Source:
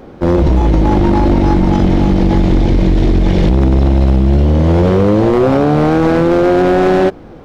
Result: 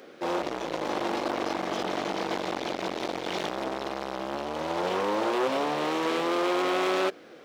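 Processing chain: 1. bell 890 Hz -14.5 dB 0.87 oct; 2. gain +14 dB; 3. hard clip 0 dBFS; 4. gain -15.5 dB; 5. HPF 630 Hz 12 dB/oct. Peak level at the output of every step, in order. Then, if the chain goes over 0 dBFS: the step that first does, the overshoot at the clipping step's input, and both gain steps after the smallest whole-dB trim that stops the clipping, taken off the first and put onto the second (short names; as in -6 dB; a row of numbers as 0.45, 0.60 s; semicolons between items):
-5.5, +8.5, 0.0, -15.5, -12.5 dBFS; step 2, 8.5 dB; step 2 +5 dB, step 4 -6.5 dB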